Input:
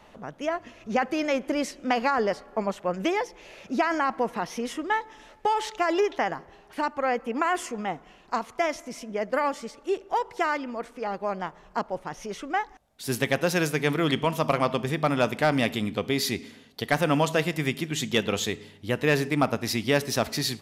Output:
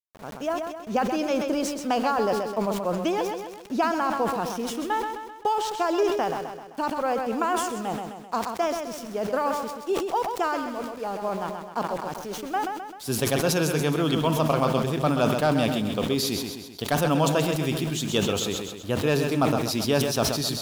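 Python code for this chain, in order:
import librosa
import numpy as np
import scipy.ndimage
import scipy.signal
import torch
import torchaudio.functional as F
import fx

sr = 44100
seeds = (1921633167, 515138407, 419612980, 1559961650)

y = fx.peak_eq(x, sr, hz=2000.0, db=-14.0, octaves=0.4)
y = np.where(np.abs(y) >= 10.0 ** (-40.5 / 20.0), y, 0.0)
y = fx.echo_feedback(y, sr, ms=130, feedback_pct=47, wet_db=-8.0)
y = fx.sustainer(y, sr, db_per_s=46.0)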